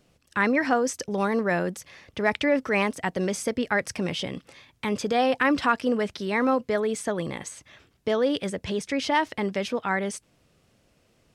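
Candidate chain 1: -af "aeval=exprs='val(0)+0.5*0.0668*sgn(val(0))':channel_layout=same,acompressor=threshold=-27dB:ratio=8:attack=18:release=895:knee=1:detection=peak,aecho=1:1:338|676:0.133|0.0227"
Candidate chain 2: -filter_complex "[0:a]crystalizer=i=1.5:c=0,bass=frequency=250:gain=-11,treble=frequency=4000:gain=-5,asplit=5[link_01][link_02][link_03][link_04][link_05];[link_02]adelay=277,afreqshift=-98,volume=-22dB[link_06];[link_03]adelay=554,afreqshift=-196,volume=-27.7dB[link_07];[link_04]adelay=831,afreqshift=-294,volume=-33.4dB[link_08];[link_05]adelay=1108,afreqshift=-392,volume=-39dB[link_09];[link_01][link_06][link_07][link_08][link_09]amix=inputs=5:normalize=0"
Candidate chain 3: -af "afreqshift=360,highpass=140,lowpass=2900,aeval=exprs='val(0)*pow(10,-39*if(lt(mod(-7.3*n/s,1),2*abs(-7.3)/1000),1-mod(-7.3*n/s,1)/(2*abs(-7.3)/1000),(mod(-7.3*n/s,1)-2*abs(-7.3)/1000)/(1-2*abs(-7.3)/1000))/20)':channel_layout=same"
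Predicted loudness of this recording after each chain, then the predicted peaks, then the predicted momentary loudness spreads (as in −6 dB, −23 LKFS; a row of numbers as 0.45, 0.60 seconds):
−30.0, −27.0, −35.5 LKFS; −16.0, −7.5, −10.0 dBFS; 3, 11, 11 LU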